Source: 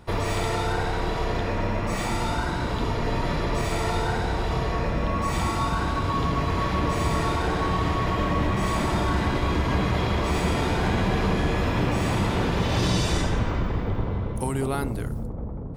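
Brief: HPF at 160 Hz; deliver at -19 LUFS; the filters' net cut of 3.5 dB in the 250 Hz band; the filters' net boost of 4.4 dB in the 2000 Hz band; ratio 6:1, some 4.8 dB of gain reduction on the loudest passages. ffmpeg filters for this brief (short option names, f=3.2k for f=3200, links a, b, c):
-af "highpass=160,equalizer=f=250:t=o:g=-3.5,equalizer=f=2k:t=o:g=5.5,acompressor=threshold=-27dB:ratio=6,volume=11.5dB"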